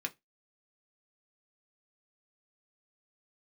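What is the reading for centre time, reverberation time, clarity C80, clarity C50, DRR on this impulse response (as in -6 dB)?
5 ms, 0.15 s, 34.5 dB, 24.5 dB, 2.5 dB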